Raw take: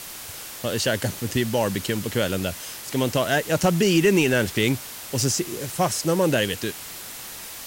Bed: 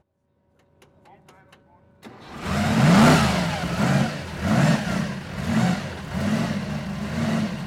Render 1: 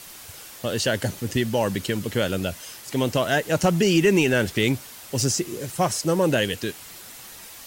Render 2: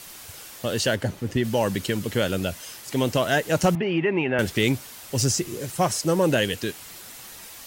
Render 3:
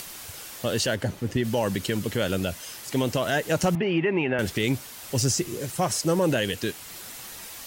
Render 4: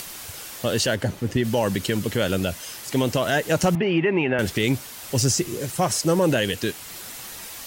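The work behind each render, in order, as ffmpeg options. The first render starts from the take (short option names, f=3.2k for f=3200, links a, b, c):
-af "afftdn=nr=6:nf=-38"
-filter_complex "[0:a]asplit=3[a][b][c];[a]afade=t=out:st=0.94:d=0.02[d];[b]highshelf=f=3.4k:g=-11,afade=t=in:st=0.94:d=0.02,afade=t=out:st=1.43:d=0.02[e];[c]afade=t=in:st=1.43:d=0.02[f];[d][e][f]amix=inputs=3:normalize=0,asettb=1/sr,asplit=3[g][h][i];[g]atrim=end=3.754[j];[h]atrim=start=3.75:end=4.39,asetpts=PTS-STARTPTS,afade=t=in:d=0.004:c=qsin,afade=t=out:st=0.636:d=0.004:c=qsin,highpass=150,equalizer=f=200:t=q:w=4:g=-8,equalizer=f=310:t=q:w=4:g=-4,equalizer=f=440:t=q:w=4:g=-6,equalizer=f=820:t=q:w=4:g=4,equalizer=f=1.5k:t=q:w=4:g=-5,lowpass=f=2.4k:w=0.5412,lowpass=f=2.4k:w=1.3066[k];[i]atrim=start=4.386[l];[j][k]acrossfade=d=0.004:c1=hsin:c2=qsin[m];[m][l]acrossfade=d=0.004:c1=qsin:c2=hsin,asettb=1/sr,asplit=3[n][o][p];[n]atrim=end=4.974[q];[o]atrim=start=4.97:end=5.55,asetpts=PTS-STARTPTS,afade=t=in:d=0.004:c=qsin,afade=t=out:st=0.576:d=0.004:c=qsin,asubboost=boost=9.5:cutoff=150[r];[p]atrim=start=5.546[s];[q][r]acrossfade=d=0.004:c1=hsin:c2=qsin[t];[t][s]acrossfade=d=0.004:c1=qsin:c2=hsin"
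-af "alimiter=limit=-14dB:level=0:latency=1:release=61,acompressor=mode=upward:threshold=-35dB:ratio=2.5"
-af "volume=3dB"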